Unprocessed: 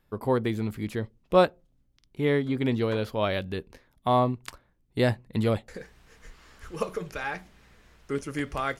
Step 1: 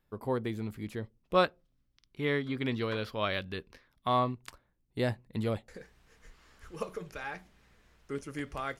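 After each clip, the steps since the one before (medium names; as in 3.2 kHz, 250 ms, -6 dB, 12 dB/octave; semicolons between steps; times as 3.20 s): time-frequency box 1.35–4.34 s, 1–6 kHz +6 dB; trim -7 dB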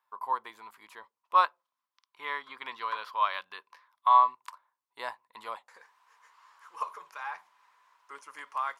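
resonant high-pass 1 kHz, resonance Q 10; trim -4 dB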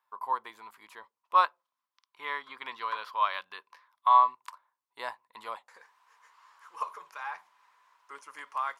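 no audible change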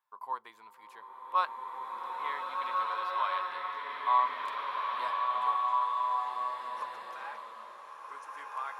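swelling reverb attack 1900 ms, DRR -3.5 dB; trim -6 dB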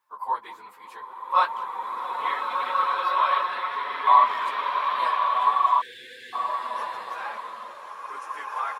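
phase randomisation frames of 50 ms; speakerphone echo 200 ms, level -18 dB; spectral selection erased 5.81–6.33 s, 530–1500 Hz; trim +8.5 dB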